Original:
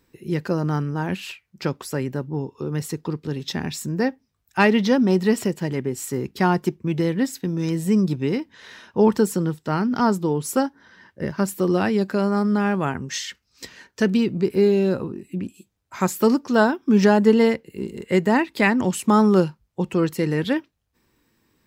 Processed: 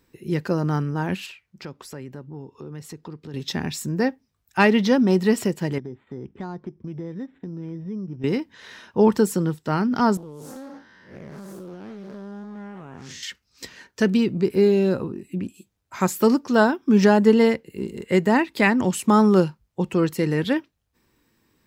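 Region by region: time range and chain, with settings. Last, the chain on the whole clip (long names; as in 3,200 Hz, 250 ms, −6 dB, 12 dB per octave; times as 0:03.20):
0:01.26–0:03.34: high-shelf EQ 9,000 Hz −7 dB + downward compressor 2 to 1, threshold −41 dBFS
0:05.78–0:08.24: downward compressor 2.5 to 1, threshold −33 dBFS + bad sample-rate conversion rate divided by 8×, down filtered, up hold + head-to-tape spacing loss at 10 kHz 33 dB
0:10.17–0:13.23: spectrum smeared in time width 175 ms + downward compressor 20 to 1, threshold −34 dBFS + highs frequency-modulated by the lows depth 0.34 ms
whole clip: no processing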